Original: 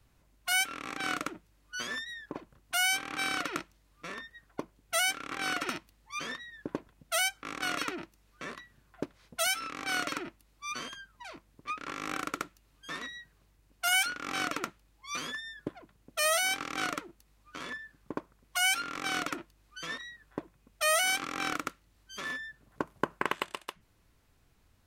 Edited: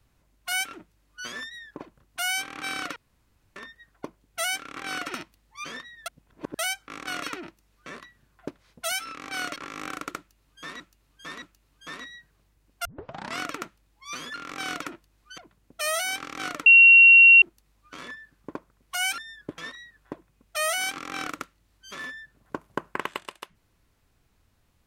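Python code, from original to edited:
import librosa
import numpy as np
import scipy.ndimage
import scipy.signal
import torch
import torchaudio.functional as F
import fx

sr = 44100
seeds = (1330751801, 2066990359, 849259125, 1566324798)

y = fx.edit(x, sr, fx.cut(start_s=0.73, length_s=0.55),
    fx.room_tone_fill(start_s=3.51, length_s=0.6),
    fx.reverse_span(start_s=6.61, length_s=0.53),
    fx.cut(start_s=10.11, length_s=1.71),
    fx.repeat(start_s=12.44, length_s=0.62, count=3),
    fx.tape_start(start_s=13.87, length_s=0.55),
    fx.swap(start_s=15.36, length_s=0.4, other_s=18.8, other_length_s=1.04),
    fx.insert_tone(at_s=17.04, length_s=0.76, hz=2740.0, db=-9.0), tone=tone)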